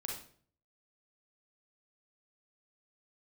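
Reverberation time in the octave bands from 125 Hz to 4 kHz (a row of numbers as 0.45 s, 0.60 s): 0.75 s, 0.60 s, 0.55 s, 0.45 s, 0.45 s, 0.40 s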